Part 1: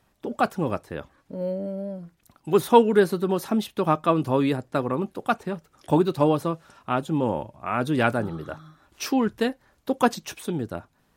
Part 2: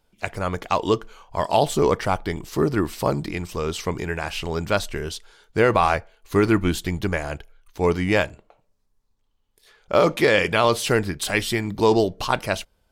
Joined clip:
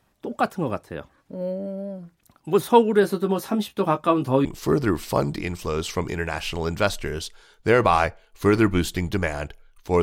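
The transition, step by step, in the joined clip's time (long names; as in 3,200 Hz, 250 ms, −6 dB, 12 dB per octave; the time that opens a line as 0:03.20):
part 1
0:03.02–0:04.45: double-tracking delay 15 ms −5.5 dB
0:04.45: continue with part 2 from 0:02.35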